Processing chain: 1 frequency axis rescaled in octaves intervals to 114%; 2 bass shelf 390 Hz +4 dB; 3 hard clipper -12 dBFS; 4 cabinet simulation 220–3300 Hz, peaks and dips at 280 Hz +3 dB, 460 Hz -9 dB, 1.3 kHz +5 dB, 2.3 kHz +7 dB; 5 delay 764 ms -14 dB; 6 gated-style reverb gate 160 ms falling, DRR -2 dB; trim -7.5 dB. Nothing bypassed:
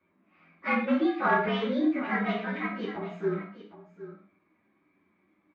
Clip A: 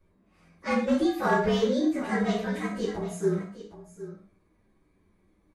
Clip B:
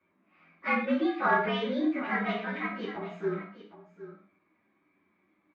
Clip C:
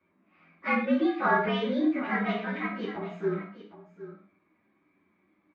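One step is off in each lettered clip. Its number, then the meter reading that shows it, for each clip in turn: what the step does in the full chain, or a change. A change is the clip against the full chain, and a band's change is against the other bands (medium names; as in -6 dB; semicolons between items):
4, momentary loudness spread change -2 LU; 2, 125 Hz band -2.5 dB; 3, distortion -23 dB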